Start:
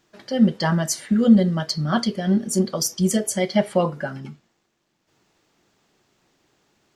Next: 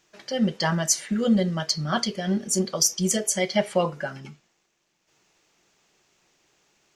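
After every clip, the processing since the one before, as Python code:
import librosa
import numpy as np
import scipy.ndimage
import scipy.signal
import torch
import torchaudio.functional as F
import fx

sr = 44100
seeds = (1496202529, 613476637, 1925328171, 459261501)

y = fx.graphic_eq_15(x, sr, hz=(100, 250, 2500, 6300), db=(-8, -6, 5, 7))
y = y * 10.0 ** (-2.0 / 20.0)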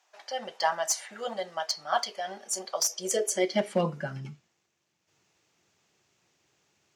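y = fx.clip_asym(x, sr, top_db=-15.5, bottom_db=-12.0)
y = fx.filter_sweep_highpass(y, sr, from_hz=760.0, to_hz=93.0, start_s=2.73, end_s=4.47, q=3.0)
y = y * 10.0 ** (-5.5 / 20.0)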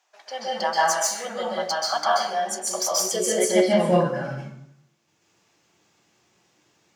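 y = fx.rev_plate(x, sr, seeds[0], rt60_s=0.75, hf_ratio=0.6, predelay_ms=120, drr_db=-6.0)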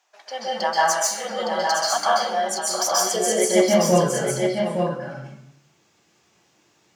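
y = x + 10.0 ** (-5.5 / 20.0) * np.pad(x, (int(863 * sr / 1000.0), 0))[:len(x)]
y = y * 10.0 ** (1.5 / 20.0)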